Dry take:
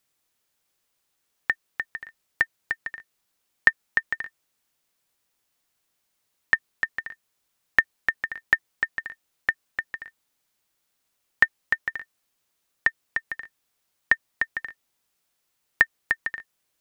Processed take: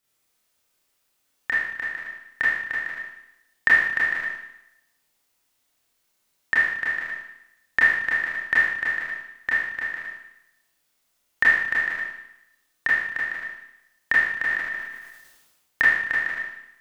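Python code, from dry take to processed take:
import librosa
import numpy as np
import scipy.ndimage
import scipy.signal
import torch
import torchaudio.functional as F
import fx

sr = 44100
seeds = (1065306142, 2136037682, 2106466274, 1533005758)

y = fx.rev_schroeder(x, sr, rt60_s=0.85, comb_ms=25, drr_db=-8.0)
y = fx.sustainer(y, sr, db_per_s=43.0, at=(14.48, 15.83), fade=0.02)
y = y * 10.0 ** (-4.5 / 20.0)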